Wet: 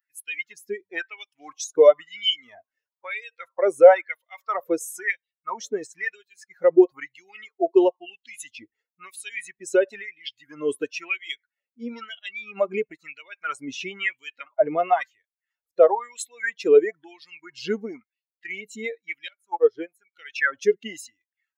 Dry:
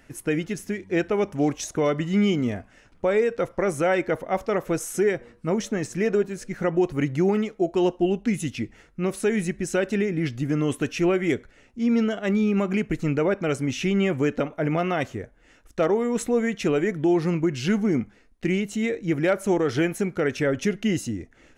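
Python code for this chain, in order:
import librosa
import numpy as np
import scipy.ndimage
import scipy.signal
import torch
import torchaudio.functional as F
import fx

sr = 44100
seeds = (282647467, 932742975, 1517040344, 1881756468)

y = fx.bin_expand(x, sr, power=2.0)
y = fx.filter_lfo_highpass(y, sr, shape='sine', hz=1.0, low_hz=410.0, high_hz=3200.0, q=5.7)
y = fx.upward_expand(y, sr, threshold_db=-30.0, expansion=2.5, at=(19.28, 20.13))
y = F.gain(torch.from_numpy(y), 3.0).numpy()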